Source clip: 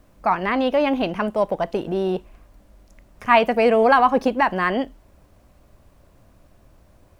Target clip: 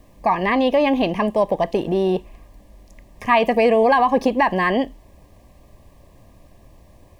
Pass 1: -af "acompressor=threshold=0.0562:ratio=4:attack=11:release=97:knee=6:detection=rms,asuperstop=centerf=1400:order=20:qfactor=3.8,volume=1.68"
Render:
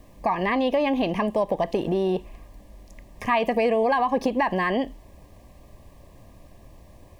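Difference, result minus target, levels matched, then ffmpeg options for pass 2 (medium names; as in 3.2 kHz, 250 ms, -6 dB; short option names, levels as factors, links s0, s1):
compression: peak gain reduction +6.5 dB
-af "acompressor=threshold=0.15:ratio=4:attack=11:release=97:knee=6:detection=rms,asuperstop=centerf=1400:order=20:qfactor=3.8,volume=1.68"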